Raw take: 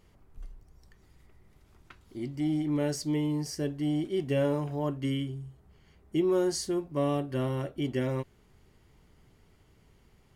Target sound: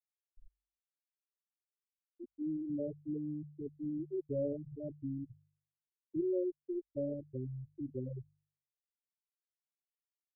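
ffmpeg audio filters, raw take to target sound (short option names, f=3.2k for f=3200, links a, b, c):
-af "afftfilt=real='re*gte(hypot(re,im),0.2)':imag='im*gte(hypot(re,im),0.2)':win_size=1024:overlap=0.75,asubboost=boost=7:cutoff=62,bandreject=f=49.31:t=h:w=4,bandreject=f=98.62:t=h:w=4,bandreject=f=147.93:t=h:w=4,volume=-6dB"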